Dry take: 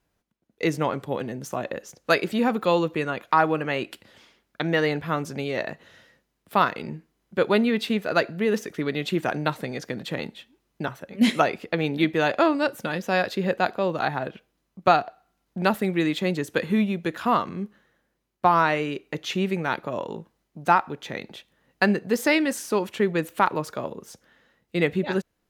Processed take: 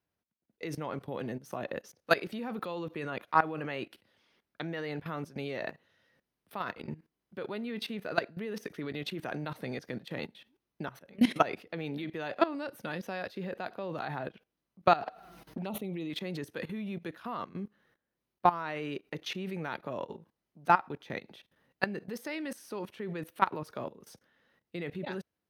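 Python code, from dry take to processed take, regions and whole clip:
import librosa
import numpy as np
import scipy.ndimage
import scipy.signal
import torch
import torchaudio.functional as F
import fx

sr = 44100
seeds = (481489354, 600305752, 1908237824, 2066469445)

y = fx.chain(x, sr, fx.high_shelf(hz=4100.0, db=-3.0),
    fx.env_flanger(rest_ms=6.7, full_db=-21.0),
    fx.env_flatten(amount_pct=50), at=(15.02, 16.1))
y = scipy.signal.sosfilt(scipy.signal.butter(4, 60.0, 'highpass', fs=sr, output='sos'), y)
y = fx.peak_eq(y, sr, hz=7300.0, db=-13.5, octaves=0.21)
y = fx.level_steps(y, sr, step_db=17)
y = y * 10.0 ** (-2.5 / 20.0)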